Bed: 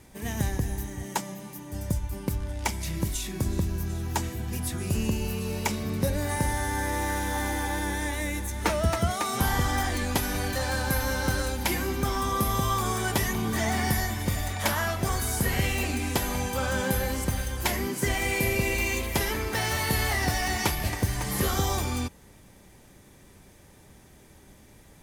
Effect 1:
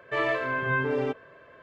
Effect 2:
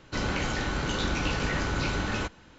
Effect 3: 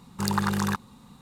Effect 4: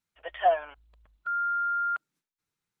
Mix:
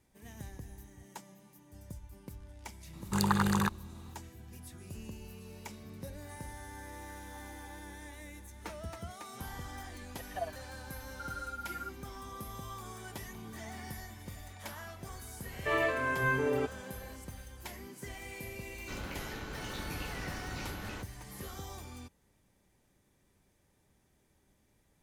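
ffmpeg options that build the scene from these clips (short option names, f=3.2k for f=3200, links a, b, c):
-filter_complex "[0:a]volume=-18dB[a];[3:a]bandreject=f=5.4k:w=6[b];[4:a]tremolo=f=18:d=0.95[c];[b]atrim=end=1.21,asetpts=PTS-STARTPTS,volume=-2.5dB,afade=t=in:d=0.004:c=hsin,afade=t=out:st=1.206:d=0.004:c=hsin,adelay=2930[d];[c]atrim=end=2.8,asetpts=PTS-STARTPTS,volume=-10.5dB,afade=t=in:d=0.004:c=hsin,afade=t=out:st=2.796:d=0.004:c=hsin,adelay=9930[e];[1:a]atrim=end=1.62,asetpts=PTS-STARTPTS,volume=-3.5dB,afade=t=in:d=0.004:c=hsin,afade=t=out:st=1.616:d=0.004:c=hsin,adelay=15540[f];[2:a]atrim=end=2.58,asetpts=PTS-STARTPTS,volume=-13dB,afade=t=in:d=0.004:c=hsin,afade=t=out:st=2.576:d=0.004:c=hsin,adelay=18750[g];[a][d][e][f][g]amix=inputs=5:normalize=0"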